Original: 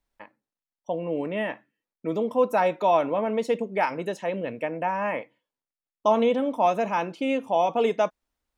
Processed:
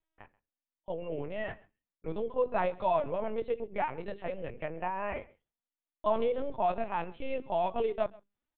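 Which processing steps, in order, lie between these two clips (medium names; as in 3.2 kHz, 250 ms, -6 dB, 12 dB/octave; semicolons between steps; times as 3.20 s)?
hum notches 50/100/150/200/250/300/350/400 Hz; LPC vocoder at 8 kHz pitch kept; delay 133 ms -23.5 dB; trim -7.5 dB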